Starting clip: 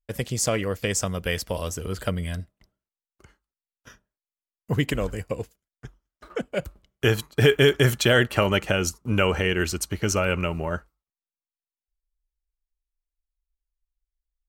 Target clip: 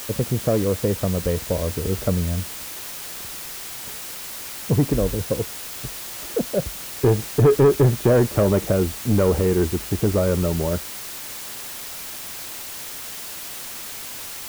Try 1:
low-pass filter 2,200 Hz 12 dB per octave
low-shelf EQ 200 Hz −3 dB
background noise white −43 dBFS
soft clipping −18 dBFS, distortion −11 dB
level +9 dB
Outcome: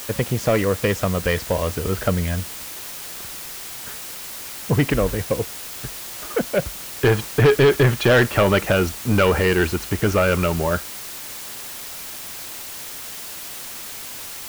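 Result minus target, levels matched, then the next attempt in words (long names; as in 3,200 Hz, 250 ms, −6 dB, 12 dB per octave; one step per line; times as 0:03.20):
2,000 Hz band +10.5 dB
low-pass filter 570 Hz 12 dB per octave
low-shelf EQ 200 Hz −3 dB
background noise white −43 dBFS
soft clipping −18 dBFS, distortion −14 dB
level +9 dB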